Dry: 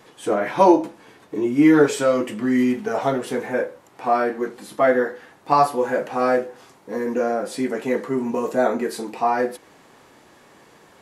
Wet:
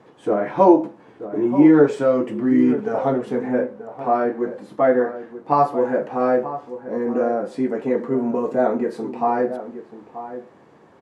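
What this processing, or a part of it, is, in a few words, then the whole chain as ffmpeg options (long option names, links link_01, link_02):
through cloth: -filter_complex "[0:a]highpass=77,lowpass=9100,highshelf=frequency=1900:gain=-17.5,asplit=2[link_01][link_02];[link_02]adelay=932.9,volume=-12dB,highshelf=frequency=4000:gain=-21[link_03];[link_01][link_03]amix=inputs=2:normalize=0,volume=2.5dB"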